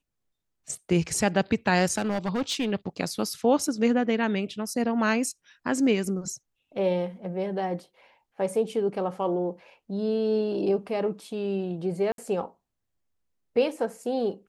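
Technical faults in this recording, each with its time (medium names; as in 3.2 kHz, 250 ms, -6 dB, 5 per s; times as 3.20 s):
1.98–2.72 s: clipped -22.5 dBFS
12.12–12.18 s: dropout 62 ms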